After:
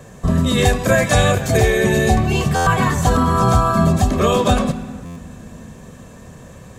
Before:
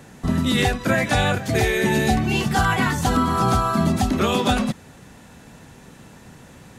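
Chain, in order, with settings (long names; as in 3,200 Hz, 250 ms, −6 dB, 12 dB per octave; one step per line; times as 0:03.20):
0:00.65–0:01.57: high-shelf EQ 4,400 Hz +7.5 dB
convolution reverb, pre-delay 3 ms, DRR 13 dB
buffer that repeats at 0:02.55/0:05.05, samples 512, times 9
level −1 dB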